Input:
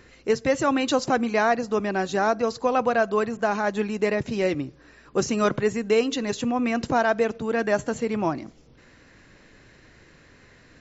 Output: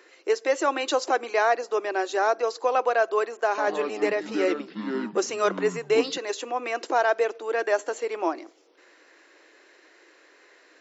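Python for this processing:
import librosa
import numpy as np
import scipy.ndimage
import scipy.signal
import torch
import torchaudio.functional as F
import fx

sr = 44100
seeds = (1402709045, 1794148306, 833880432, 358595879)

y = scipy.signal.sosfilt(scipy.signal.ellip(4, 1.0, 50, 330.0, 'highpass', fs=sr, output='sos'), x)
y = fx.echo_pitch(y, sr, ms=97, semitones=-6, count=2, db_per_echo=-6.0, at=(3.48, 6.18))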